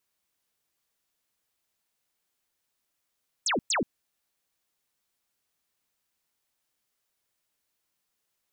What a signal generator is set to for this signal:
repeated falling chirps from 8,700 Hz, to 180 Hz, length 0.13 s sine, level −23.5 dB, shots 2, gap 0.11 s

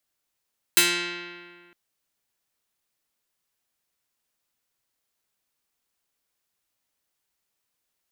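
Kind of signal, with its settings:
Karplus-Strong string F3, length 0.96 s, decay 1.90 s, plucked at 0.29, medium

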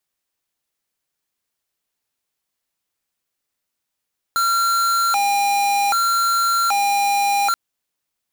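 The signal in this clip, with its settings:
siren hi-lo 806–1,370 Hz 0.64 per second square −18 dBFS 3.18 s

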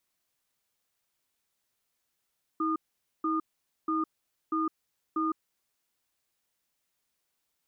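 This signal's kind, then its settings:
tone pair in a cadence 319 Hz, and 1,220 Hz, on 0.16 s, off 0.48 s, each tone −28.5 dBFS 2.81 s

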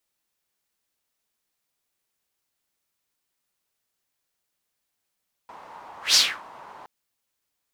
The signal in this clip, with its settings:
pass-by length 1.37 s, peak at 0:00.66, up 0.15 s, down 0.29 s, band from 930 Hz, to 5,000 Hz, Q 3.6, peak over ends 28.5 dB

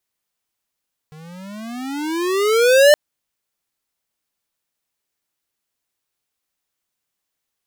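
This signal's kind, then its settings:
pitch glide with a swell square, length 1.82 s, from 151 Hz, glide +24 semitones, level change +31.5 dB, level −8.5 dB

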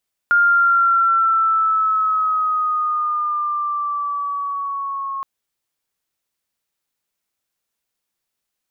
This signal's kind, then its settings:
pitch glide with a swell sine, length 4.92 s, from 1,410 Hz, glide −4.5 semitones, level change −12.5 dB, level −10.5 dB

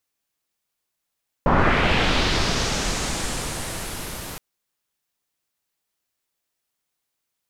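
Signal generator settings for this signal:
filter sweep on noise pink, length 2.92 s lowpass, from 880 Hz, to 13,000 Hz, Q 1.6, linear, gain ramp −19 dB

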